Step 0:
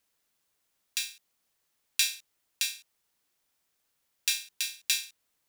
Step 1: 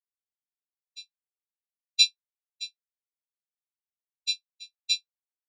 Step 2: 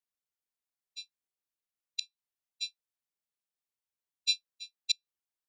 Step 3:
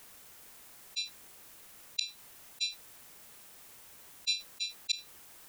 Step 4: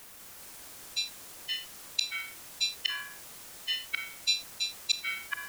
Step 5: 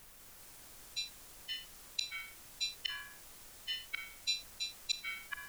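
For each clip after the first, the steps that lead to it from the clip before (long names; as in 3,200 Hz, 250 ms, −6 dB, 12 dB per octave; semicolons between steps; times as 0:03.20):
Butterworth high-pass 2,100 Hz; every bin expanded away from the loudest bin 4 to 1
gate with flip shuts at −14 dBFS, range −32 dB
parametric band 4,400 Hz −4 dB 1.5 octaves; envelope flattener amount 70%
delay with pitch and tempo change per echo 197 ms, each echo −5 semitones, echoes 3; level +4 dB
background noise brown −56 dBFS; level −7.5 dB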